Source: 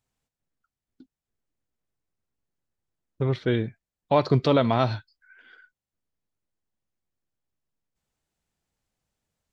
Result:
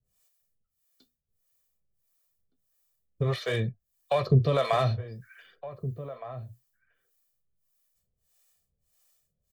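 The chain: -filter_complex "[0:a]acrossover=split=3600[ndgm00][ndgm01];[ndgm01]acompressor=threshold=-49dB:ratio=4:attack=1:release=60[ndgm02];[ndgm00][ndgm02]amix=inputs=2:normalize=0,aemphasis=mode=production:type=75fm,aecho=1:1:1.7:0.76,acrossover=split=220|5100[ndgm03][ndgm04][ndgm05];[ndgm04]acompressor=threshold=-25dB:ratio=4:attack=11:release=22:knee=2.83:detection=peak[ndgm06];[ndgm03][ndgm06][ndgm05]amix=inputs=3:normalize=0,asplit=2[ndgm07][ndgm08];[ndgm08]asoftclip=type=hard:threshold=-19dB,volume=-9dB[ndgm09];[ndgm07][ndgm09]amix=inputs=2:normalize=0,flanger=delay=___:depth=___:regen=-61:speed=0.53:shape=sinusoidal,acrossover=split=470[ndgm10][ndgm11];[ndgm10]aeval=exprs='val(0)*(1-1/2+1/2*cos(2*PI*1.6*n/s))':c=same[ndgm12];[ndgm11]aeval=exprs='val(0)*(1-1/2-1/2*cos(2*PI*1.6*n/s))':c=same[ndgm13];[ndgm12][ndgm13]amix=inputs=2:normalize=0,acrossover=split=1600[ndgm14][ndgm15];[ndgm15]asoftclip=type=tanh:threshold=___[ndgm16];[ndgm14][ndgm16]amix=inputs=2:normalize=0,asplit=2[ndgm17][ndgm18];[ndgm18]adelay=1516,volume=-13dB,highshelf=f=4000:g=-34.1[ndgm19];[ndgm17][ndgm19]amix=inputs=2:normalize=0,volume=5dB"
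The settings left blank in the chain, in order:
5.2, 9.9, -38.5dB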